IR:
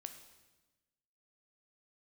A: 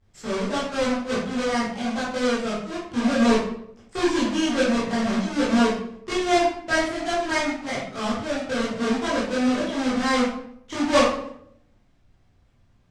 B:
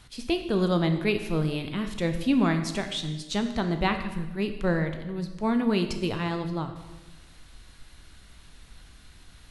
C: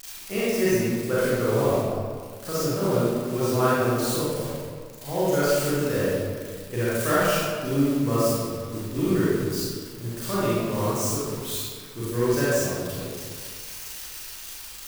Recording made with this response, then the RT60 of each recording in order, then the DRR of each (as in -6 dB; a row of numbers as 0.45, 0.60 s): B; 0.70, 1.2, 1.9 s; -9.5, 6.5, -10.5 dB